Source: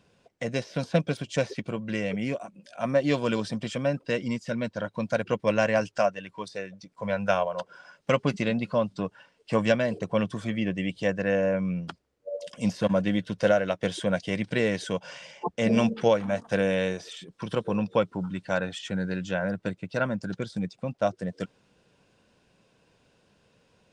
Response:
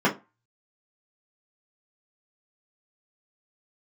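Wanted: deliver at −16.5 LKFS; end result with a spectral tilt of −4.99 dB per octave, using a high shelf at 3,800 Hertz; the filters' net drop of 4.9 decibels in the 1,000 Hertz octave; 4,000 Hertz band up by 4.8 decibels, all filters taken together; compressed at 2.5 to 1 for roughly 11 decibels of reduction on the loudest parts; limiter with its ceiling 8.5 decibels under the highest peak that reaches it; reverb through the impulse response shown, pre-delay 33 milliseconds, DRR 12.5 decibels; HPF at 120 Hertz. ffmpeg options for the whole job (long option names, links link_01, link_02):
-filter_complex "[0:a]highpass=120,equalizer=frequency=1000:width_type=o:gain=-8,highshelf=frequency=3800:gain=5,equalizer=frequency=4000:width_type=o:gain=4,acompressor=threshold=-36dB:ratio=2.5,alimiter=level_in=3.5dB:limit=-24dB:level=0:latency=1,volume=-3.5dB,asplit=2[link_01][link_02];[1:a]atrim=start_sample=2205,adelay=33[link_03];[link_02][link_03]afir=irnorm=-1:irlink=0,volume=-29dB[link_04];[link_01][link_04]amix=inputs=2:normalize=0,volume=22dB"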